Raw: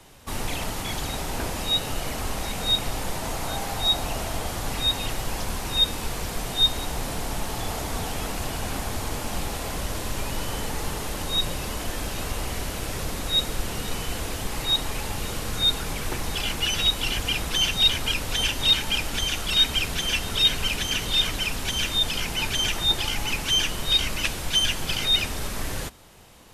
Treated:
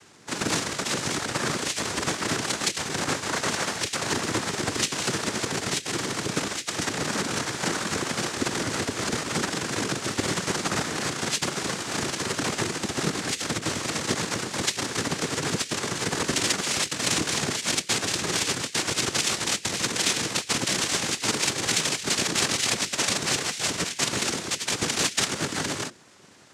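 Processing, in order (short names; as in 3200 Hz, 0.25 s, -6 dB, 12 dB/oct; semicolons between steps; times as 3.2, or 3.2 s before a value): high shelf 2800 Hz +3 dB; negative-ratio compressor -24 dBFS, ratio -0.5; added harmonics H 3 -14 dB, 5 -26 dB, 6 -10 dB, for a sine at -10 dBFS; frequency shift +50 Hz; noise vocoder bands 3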